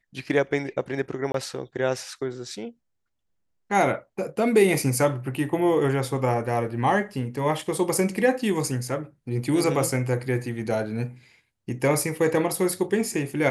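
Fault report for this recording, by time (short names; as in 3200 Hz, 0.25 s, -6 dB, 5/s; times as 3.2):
1.32–1.34 gap 23 ms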